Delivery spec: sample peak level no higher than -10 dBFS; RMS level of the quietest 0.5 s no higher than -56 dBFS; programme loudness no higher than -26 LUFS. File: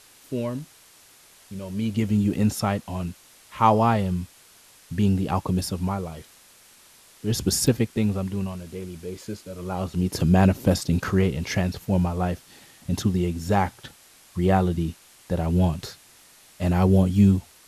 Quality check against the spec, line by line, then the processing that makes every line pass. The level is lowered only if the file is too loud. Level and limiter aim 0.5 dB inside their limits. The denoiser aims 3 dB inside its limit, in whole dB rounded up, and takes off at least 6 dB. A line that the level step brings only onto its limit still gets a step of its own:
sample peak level -5.5 dBFS: fail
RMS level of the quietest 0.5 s -53 dBFS: fail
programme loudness -24.0 LUFS: fail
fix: denoiser 6 dB, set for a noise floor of -53 dBFS; gain -2.5 dB; limiter -10.5 dBFS

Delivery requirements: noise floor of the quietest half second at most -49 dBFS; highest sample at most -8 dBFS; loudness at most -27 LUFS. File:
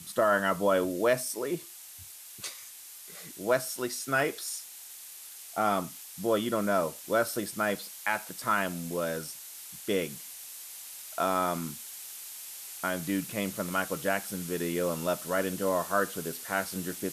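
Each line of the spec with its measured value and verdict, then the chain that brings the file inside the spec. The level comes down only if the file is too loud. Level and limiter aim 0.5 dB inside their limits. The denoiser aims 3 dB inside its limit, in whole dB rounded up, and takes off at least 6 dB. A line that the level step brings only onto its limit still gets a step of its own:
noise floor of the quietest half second -47 dBFS: fail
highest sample -12.5 dBFS: OK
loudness -31.0 LUFS: OK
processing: denoiser 6 dB, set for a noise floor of -47 dBFS

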